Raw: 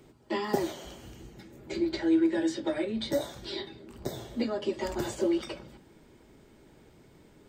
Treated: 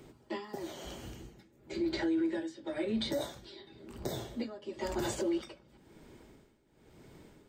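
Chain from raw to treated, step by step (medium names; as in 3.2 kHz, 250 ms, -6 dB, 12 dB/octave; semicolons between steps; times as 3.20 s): tremolo 0.98 Hz, depth 86%; peak limiter -27 dBFS, peak gain reduction 10 dB; trim +2 dB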